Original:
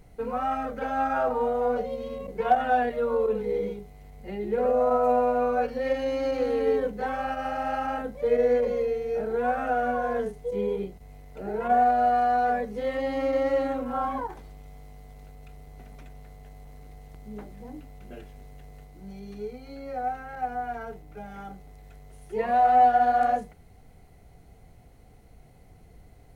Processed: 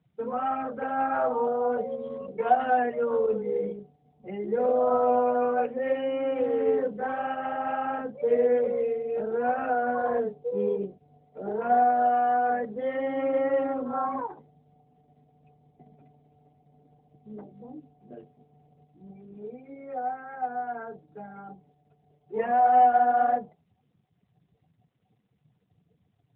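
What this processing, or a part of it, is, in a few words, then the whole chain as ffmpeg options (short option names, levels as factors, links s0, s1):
mobile call with aggressive noise cancelling: -filter_complex "[0:a]asplit=3[s0][s1][s2];[s0]afade=t=out:st=10.02:d=0.02[s3];[s1]equalizer=f=590:w=1.4:g=2.5,afade=t=in:st=10.02:d=0.02,afade=t=out:st=11.52:d=0.02[s4];[s2]afade=t=in:st=11.52:d=0.02[s5];[s3][s4][s5]amix=inputs=3:normalize=0,highpass=130,afftdn=nr=23:nf=-45" -ar 8000 -c:a libopencore_amrnb -b:a 12200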